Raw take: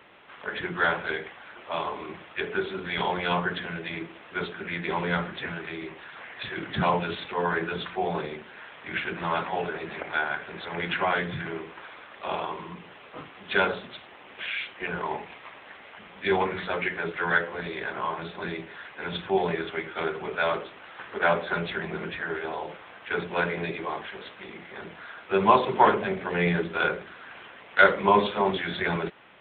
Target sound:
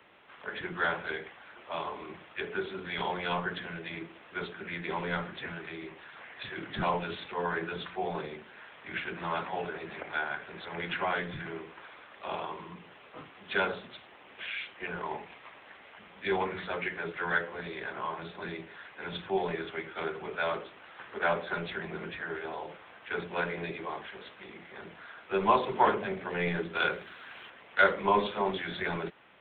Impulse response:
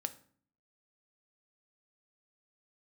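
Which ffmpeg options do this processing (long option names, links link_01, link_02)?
-filter_complex "[0:a]asettb=1/sr,asplit=3[link_01][link_02][link_03];[link_01]atrim=end=26.754[link_04];[link_02]atrim=start=26.75:end=27.5,asetpts=PTS-STARTPTS,afade=type=in:duration=0.004:curve=qsin,afade=type=out:start_time=0.746:duration=0.004:curve=qsin,highshelf=frequency=3100:gain=11.5[link_05];[link_03]atrim=start=27.496[link_06];[link_04][link_05]acrossfade=duration=0.004:curve1=hsin:curve2=qsin[link_07];[link_07][link_06]acrossfade=duration=0.004:curve1=qsin:curve2=hsin,acrossover=split=220|470|1700[link_08][link_09][link_10][link_11];[link_08]aeval=exprs='clip(val(0),-1,0.0112)':channel_layout=same[link_12];[link_12][link_09][link_10][link_11]amix=inputs=4:normalize=0,volume=-5.5dB"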